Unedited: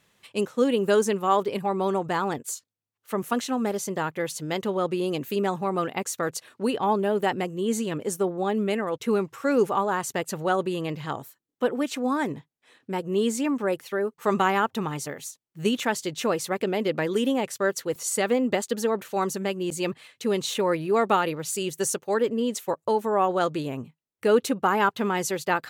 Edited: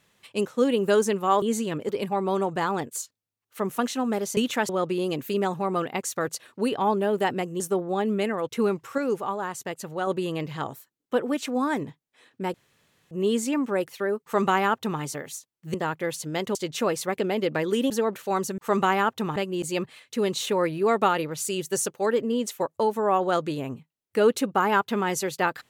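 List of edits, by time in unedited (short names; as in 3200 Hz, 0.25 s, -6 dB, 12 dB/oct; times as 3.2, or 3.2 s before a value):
3.9–4.71 swap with 15.66–15.98
7.62–8.09 move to 1.42
9.47–10.56 gain -5 dB
13.03 insert room tone 0.57 s
14.15–14.93 copy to 19.44
17.33–18.76 cut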